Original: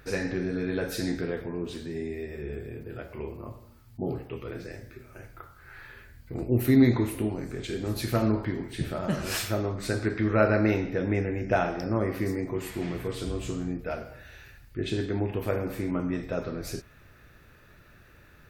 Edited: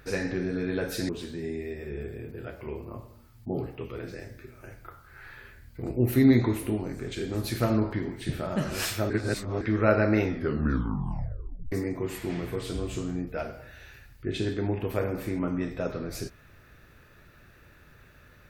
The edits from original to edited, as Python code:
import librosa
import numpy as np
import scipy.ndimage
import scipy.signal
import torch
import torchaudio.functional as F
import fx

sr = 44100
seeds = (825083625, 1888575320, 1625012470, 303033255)

y = fx.edit(x, sr, fx.cut(start_s=1.09, length_s=0.52),
    fx.reverse_span(start_s=9.62, length_s=0.51),
    fx.tape_stop(start_s=10.76, length_s=1.48), tone=tone)